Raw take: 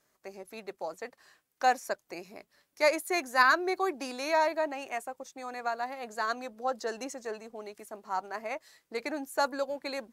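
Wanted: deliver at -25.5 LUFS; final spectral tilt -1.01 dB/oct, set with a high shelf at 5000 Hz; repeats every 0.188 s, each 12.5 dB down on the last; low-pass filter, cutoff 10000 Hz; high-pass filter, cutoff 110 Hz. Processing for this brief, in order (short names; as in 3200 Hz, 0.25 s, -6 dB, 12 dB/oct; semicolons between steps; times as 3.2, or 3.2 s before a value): HPF 110 Hz; LPF 10000 Hz; high shelf 5000 Hz +6.5 dB; feedback echo 0.188 s, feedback 24%, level -12.5 dB; gain +5.5 dB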